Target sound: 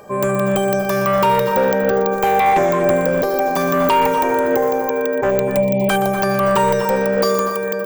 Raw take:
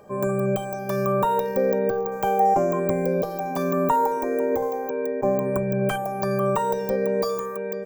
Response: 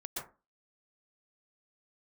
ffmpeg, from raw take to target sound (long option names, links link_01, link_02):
-filter_complex "[0:a]tiltshelf=frequency=730:gain=-3.5,aeval=exprs='0.355*(cos(1*acos(clip(val(0)/0.355,-1,1)))-cos(1*PI/2))+0.126*(cos(5*acos(clip(val(0)/0.355,-1,1)))-cos(5*PI/2))':channel_layout=same,asplit=3[link_01][link_02][link_03];[link_01]afade=type=out:start_time=5.3:duration=0.02[link_04];[link_02]asuperstop=centerf=1400:order=12:qfactor=1.4,afade=type=in:start_time=5.3:duration=0.02,afade=type=out:start_time=5.88:duration=0.02[link_05];[link_03]afade=type=in:start_time=5.88:duration=0.02[link_06];[link_04][link_05][link_06]amix=inputs=3:normalize=0,asplit=2[link_07][link_08];[1:a]atrim=start_sample=2205,adelay=121[link_09];[link_08][link_09]afir=irnorm=-1:irlink=0,volume=-6.5dB[link_10];[link_07][link_10]amix=inputs=2:normalize=0"